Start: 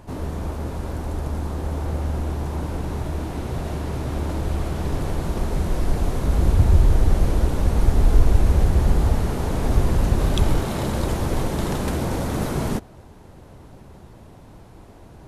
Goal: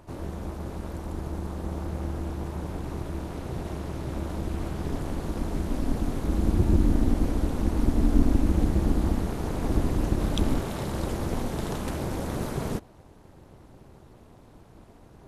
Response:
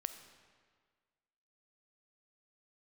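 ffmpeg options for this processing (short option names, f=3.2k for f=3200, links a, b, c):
-af "tremolo=f=260:d=0.824,volume=-3dB"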